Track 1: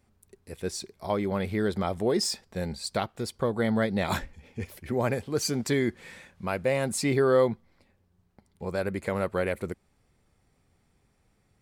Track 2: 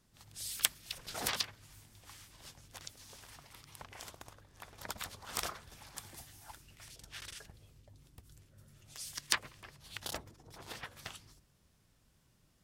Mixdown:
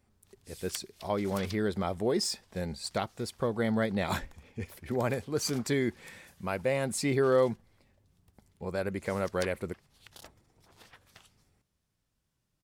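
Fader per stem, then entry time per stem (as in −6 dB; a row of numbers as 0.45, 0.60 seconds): −3.0, −10.0 decibels; 0.00, 0.10 seconds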